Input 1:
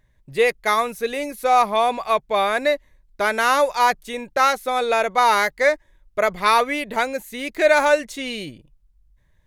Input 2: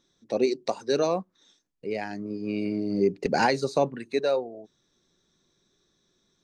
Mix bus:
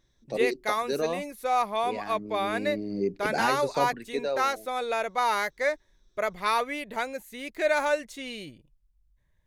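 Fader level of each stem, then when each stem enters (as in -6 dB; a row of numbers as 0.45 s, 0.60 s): -9.0 dB, -5.0 dB; 0.00 s, 0.00 s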